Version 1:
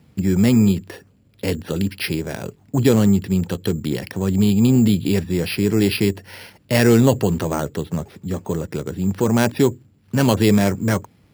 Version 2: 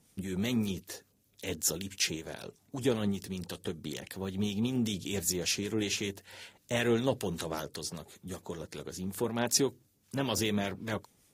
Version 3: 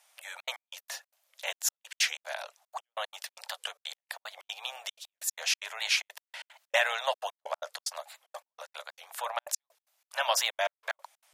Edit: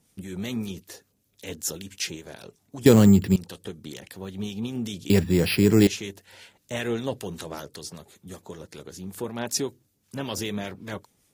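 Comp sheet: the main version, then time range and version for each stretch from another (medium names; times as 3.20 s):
2
2.86–3.36 s: from 1
5.10–5.87 s: from 1
not used: 3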